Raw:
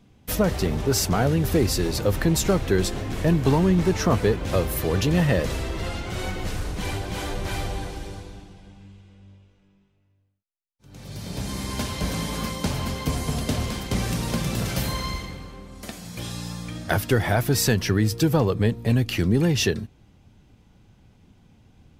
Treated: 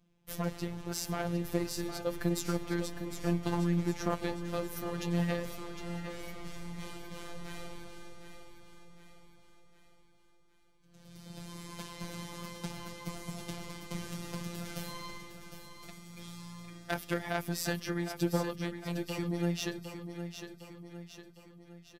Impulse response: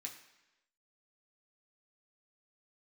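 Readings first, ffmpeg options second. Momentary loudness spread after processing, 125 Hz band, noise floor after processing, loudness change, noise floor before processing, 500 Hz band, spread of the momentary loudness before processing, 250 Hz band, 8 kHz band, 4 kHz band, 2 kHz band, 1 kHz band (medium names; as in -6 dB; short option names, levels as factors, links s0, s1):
17 LU, -14.5 dB, -62 dBFS, -12.5 dB, -61 dBFS, -13.0 dB, 13 LU, -11.0 dB, -13.5 dB, -13.0 dB, -11.5 dB, -11.0 dB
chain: -af "aeval=exprs='0.447*(cos(1*acos(clip(val(0)/0.447,-1,1)))-cos(1*PI/2))+0.141*(cos(3*acos(clip(val(0)/0.447,-1,1)))-cos(3*PI/2))+0.0398*(cos(5*acos(clip(val(0)/0.447,-1,1)))-cos(5*PI/2))+0.0112*(cos(7*acos(clip(val(0)/0.447,-1,1)))-cos(7*PI/2))':c=same,afftfilt=real='hypot(re,im)*cos(PI*b)':imag='0':win_size=1024:overlap=0.75,aecho=1:1:758|1516|2274|3032|3790|4548:0.355|0.177|0.0887|0.0444|0.0222|0.0111,volume=0.794"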